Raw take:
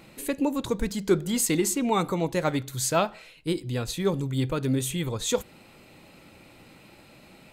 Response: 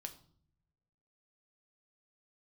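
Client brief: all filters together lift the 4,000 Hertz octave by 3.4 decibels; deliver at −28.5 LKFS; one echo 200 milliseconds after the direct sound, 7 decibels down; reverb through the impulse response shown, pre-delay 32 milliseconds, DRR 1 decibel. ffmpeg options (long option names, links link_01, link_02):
-filter_complex "[0:a]equalizer=frequency=4000:width_type=o:gain=4,aecho=1:1:200:0.447,asplit=2[link_01][link_02];[1:a]atrim=start_sample=2205,adelay=32[link_03];[link_02][link_03]afir=irnorm=-1:irlink=0,volume=3dB[link_04];[link_01][link_04]amix=inputs=2:normalize=0,volume=-5.5dB"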